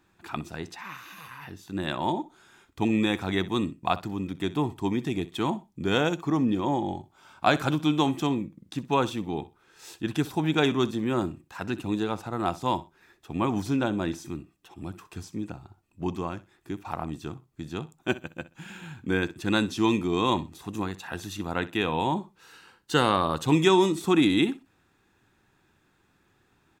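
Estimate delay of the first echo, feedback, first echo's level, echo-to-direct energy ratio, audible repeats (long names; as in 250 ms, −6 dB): 63 ms, 21%, −17.5 dB, −17.5 dB, 2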